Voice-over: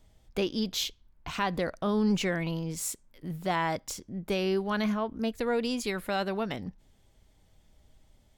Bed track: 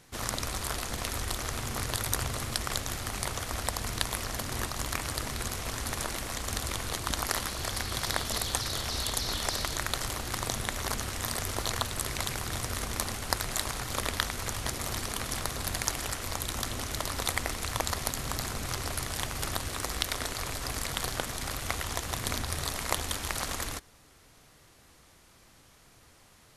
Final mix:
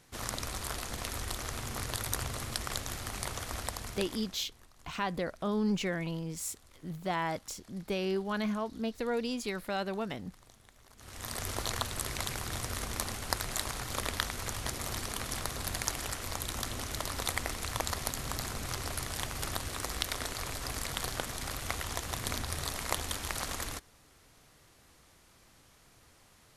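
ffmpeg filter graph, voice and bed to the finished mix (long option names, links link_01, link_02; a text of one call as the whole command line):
ffmpeg -i stem1.wav -i stem2.wav -filter_complex "[0:a]adelay=3600,volume=-4dB[link_01];[1:a]volume=20.5dB,afade=type=out:start_time=3.55:duration=0.86:silence=0.0668344,afade=type=in:start_time=10.96:duration=0.52:silence=0.0595662[link_02];[link_01][link_02]amix=inputs=2:normalize=0" out.wav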